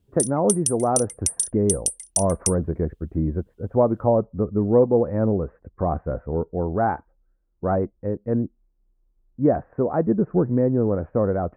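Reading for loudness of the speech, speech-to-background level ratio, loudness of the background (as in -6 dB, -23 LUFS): -23.5 LUFS, 1.5 dB, -25.0 LUFS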